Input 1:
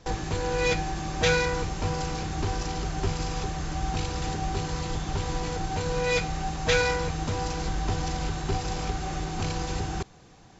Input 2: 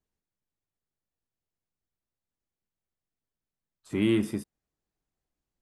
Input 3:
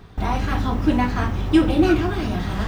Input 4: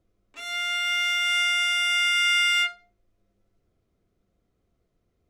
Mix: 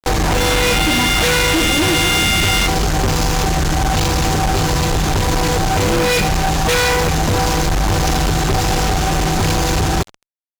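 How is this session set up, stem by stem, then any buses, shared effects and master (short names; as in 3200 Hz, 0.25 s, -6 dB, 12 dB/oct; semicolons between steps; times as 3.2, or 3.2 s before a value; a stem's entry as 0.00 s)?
0.0 dB, 0.00 s, no send, echo send -21 dB, dry
-8.0 dB, 1.85 s, no send, no echo send, dry
-10.0 dB, 0.00 s, no send, no echo send, dry
-1.5 dB, 0.00 s, no send, no echo send, tilt +3.5 dB/oct; compressor 2:1, threshold -33 dBFS, peak gain reduction 10 dB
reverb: off
echo: feedback echo 72 ms, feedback 60%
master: fuzz box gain 38 dB, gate -41 dBFS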